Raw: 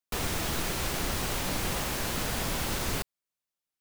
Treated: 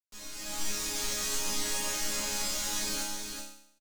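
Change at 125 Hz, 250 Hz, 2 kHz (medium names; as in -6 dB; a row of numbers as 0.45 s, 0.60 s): -16.0 dB, -7.0 dB, -4.0 dB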